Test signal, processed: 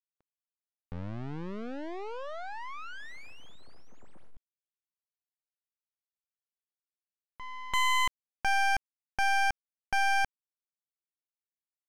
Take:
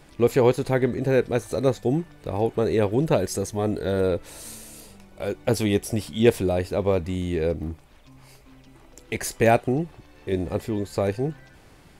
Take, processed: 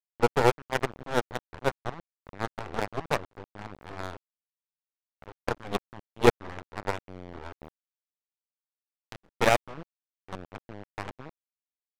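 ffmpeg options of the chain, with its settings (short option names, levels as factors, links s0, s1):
-af "aeval=exprs='0.562*(cos(1*acos(clip(val(0)/0.562,-1,1)))-cos(1*PI/2))+0.112*(cos(3*acos(clip(val(0)/0.562,-1,1)))-cos(3*PI/2))+0.0708*(cos(4*acos(clip(val(0)/0.562,-1,1)))-cos(4*PI/2))+0.00631*(cos(5*acos(clip(val(0)/0.562,-1,1)))-cos(5*PI/2))+0.0631*(cos(7*acos(clip(val(0)/0.562,-1,1)))-cos(7*PI/2))':c=same,aeval=exprs='val(0)*gte(abs(val(0)),0.0266)':c=same,adynamicsmooth=sensitivity=4:basefreq=710"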